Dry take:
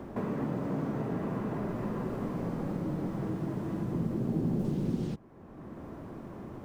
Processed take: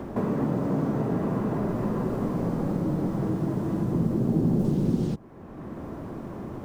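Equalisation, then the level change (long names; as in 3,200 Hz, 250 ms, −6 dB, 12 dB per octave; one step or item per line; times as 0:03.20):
dynamic equaliser 2,300 Hz, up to −5 dB, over −56 dBFS, Q 0.89
+7.0 dB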